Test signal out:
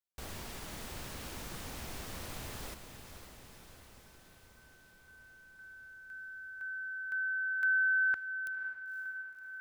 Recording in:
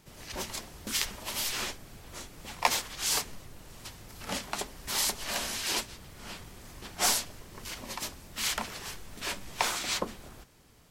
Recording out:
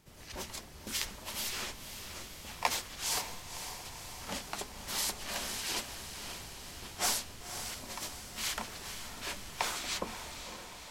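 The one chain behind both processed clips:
parametric band 68 Hz +3.5 dB
feedback delay with all-pass diffusion 527 ms, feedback 66%, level −9 dB
level −5 dB

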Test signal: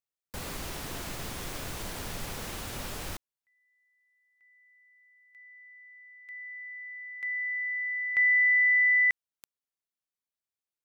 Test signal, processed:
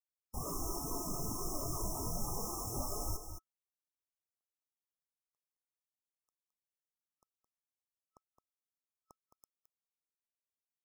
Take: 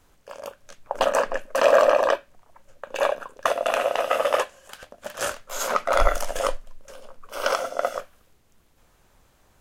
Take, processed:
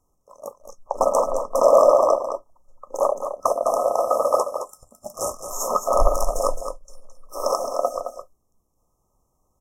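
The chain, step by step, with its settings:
brick-wall band-stop 1,300–5,200 Hz
noise reduction from a noise print of the clip's start 12 dB
single-tap delay 216 ms −8.5 dB
level +2.5 dB

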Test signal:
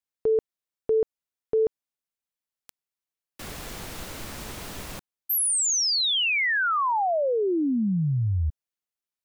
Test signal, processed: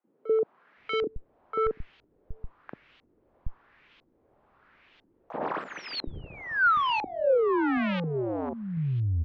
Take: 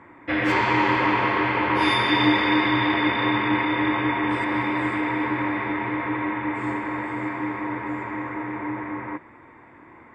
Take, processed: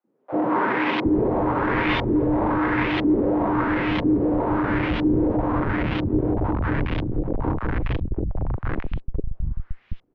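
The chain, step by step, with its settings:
comparator with hysteresis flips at −22 dBFS
background noise white −57 dBFS
auto-filter low-pass saw up 1 Hz 290–3,400 Hz
high-frequency loss of the air 210 metres
three-band delay without the direct sound highs, mids, lows 40/770 ms, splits 170/740 Hz
level +3 dB

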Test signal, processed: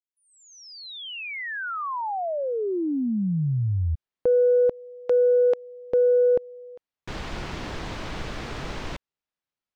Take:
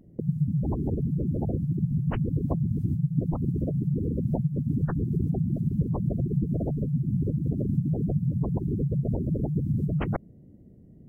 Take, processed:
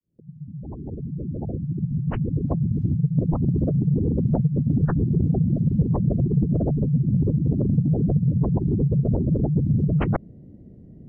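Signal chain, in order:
fade in at the beginning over 3.50 s
soft clipping −14.5 dBFS
high-frequency loss of the air 150 metres
level +6.5 dB

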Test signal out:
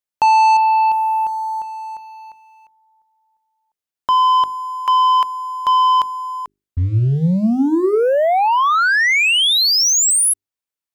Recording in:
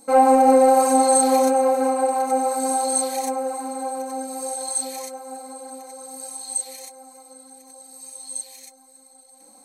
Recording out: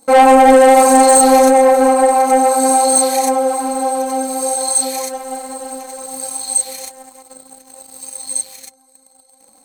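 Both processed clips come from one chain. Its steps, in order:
leveller curve on the samples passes 2
mains-hum notches 50/100/150/200/250/300/350/400 Hz
level +3 dB

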